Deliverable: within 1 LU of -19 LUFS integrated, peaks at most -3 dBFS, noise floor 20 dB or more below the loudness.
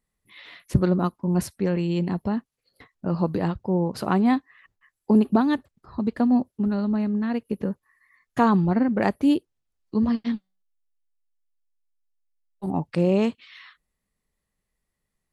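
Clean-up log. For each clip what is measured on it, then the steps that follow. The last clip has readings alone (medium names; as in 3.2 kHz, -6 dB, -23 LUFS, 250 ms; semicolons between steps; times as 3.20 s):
loudness -24.0 LUFS; peak level -6.5 dBFS; loudness target -19.0 LUFS
-> trim +5 dB; peak limiter -3 dBFS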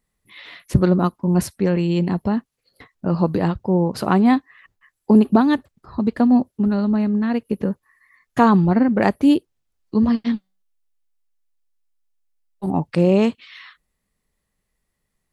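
loudness -19.0 LUFS; peak level -3.0 dBFS; noise floor -76 dBFS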